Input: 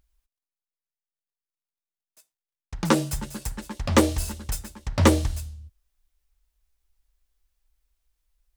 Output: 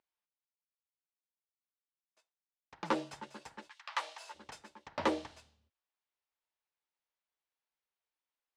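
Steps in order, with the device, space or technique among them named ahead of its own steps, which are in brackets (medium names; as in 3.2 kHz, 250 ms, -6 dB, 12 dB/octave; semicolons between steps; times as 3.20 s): intercom (band-pass 370–3600 Hz; peaking EQ 900 Hz +4.5 dB 0.36 oct; saturation -13 dBFS, distortion -14 dB); 3.68–4.34 s: high-pass 1.5 kHz -> 520 Hz 24 dB/octave; trim -8 dB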